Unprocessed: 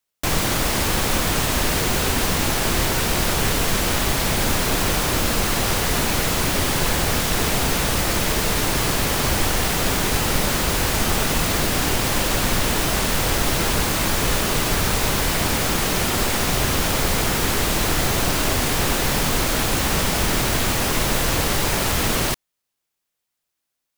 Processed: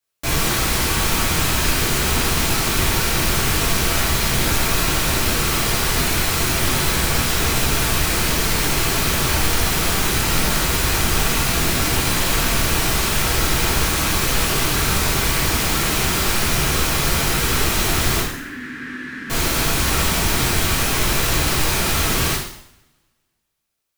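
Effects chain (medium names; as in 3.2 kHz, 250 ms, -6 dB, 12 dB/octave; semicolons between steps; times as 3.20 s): 18.20–19.30 s: two resonant band-passes 670 Hz, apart 2.7 oct; dynamic bell 550 Hz, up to -6 dB, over -40 dBFS, Q 1.6; two-slope reverb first 0.68 s, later 1.8 s, from -27 dB, DRR -7.5 dB; trim -5.5 dB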